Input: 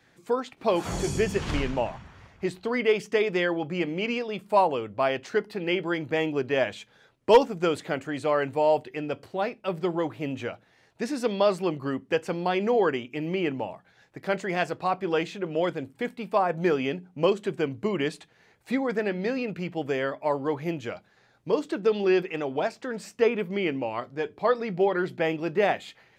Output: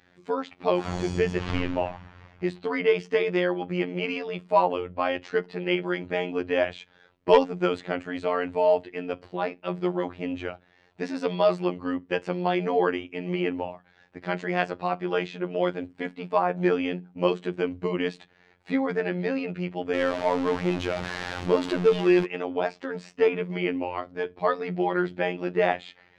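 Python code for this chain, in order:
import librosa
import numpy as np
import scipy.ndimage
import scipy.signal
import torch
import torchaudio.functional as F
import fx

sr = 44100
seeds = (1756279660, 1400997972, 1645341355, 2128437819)

y = fx.zero_step(x, sr, step_db=-27.0, at=(19.94, 22.25))
y = scipy.signal.sosfilt(scipy.signal.butter(2, 4100.0, 'lowpass', fs=sr, output='sos'), y)
y = fx.robotise(y, sr, hz=89.2)
y = F.gain(torch.from_numpy(y), 2.5).numpy()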